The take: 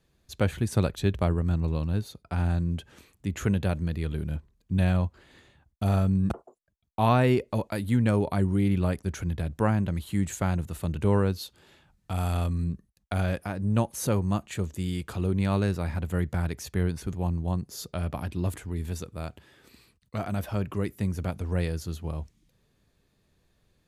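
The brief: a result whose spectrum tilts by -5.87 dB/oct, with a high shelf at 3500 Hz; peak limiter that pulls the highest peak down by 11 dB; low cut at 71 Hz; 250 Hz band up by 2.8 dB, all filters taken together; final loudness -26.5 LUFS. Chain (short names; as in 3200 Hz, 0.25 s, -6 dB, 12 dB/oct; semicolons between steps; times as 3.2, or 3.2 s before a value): HPF 71 Hz; bell 250 Hz +4 dB; high shelf 3500 Hz +7.5 dB; gain +4 dB; limiter -13.5 dBFS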